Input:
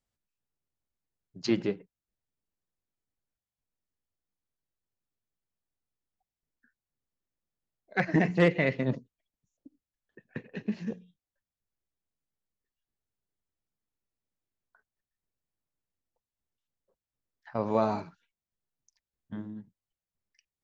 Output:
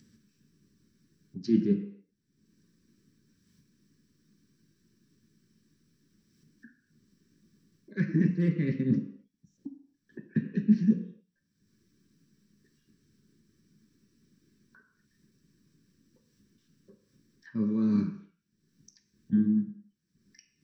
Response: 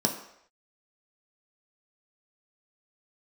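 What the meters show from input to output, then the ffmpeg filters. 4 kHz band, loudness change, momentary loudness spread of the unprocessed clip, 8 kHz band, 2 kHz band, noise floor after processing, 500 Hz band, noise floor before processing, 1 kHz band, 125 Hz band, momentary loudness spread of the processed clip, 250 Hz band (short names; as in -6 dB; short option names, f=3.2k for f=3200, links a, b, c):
under -10 dB, +1.5 dB, 19 LU, n/a, -11.5 dB, -77 dBFS, -8.0 dB, under -85 dBFS, under -20 dB, +3.5 dB, 21 LU, +6.0 dB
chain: -filter_complex "[0:a]highshelf=f=3.3k:g=-8.5,areverse,acompressor=threshold=-34dB:ratio=6,areverse,asuperstop=centerf=740:order=4:qfactor=0.6,acompressor=mode=upward:threshold=-52dB:ratio=2.5[a];[1:a]atrim=start_sample=2205,afade=t=out:st=0.34:d=0.01,atrim=end_sample=15435[b];[a][b]afir=irnorm=-1:irlink=0,volume=-3.5dB"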